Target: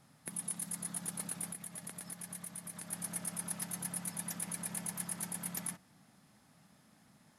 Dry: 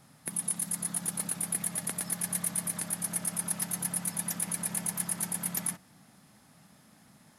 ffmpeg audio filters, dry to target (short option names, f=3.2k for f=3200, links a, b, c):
-filter_complex "[0:a]highshelf=f=11k:g=-5,asettb=1/sr,asplit=3[a][b][c];[a]atrim=end=1.494[d];[b]atrim=start=1.49:end=2.92,asetpts=PTS-STARTPTS,afade=t=in:d=0.004:c=qsin,afade=t=out:st=1.426:d=0.004:c=qsin,acompressor=threshold=-36dB:ratio=6[e];[c]atrim=start=2.916[f];[d][e]acrossfade=d=0.004:c1=hsin:c2=qsin[g];[g][f]acrossfade=d=0.004:c1=qsin:c2=hsin,volume=-5.5dB"